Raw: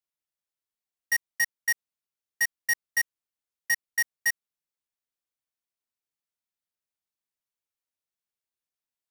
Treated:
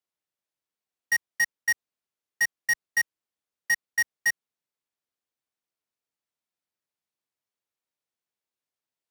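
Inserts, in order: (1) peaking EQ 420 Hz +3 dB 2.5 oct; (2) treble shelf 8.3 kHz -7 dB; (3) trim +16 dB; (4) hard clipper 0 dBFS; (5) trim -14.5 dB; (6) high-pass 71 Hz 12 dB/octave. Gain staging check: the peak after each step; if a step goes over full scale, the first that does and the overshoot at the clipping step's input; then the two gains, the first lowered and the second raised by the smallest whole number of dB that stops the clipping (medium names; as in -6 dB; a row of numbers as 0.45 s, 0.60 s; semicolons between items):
-20.0 dBFS, -20.0 dBFS, -4.0 dBFS, -4.0 dBFS, -18.5 dBFS, -19.0 dBFS; nothing clips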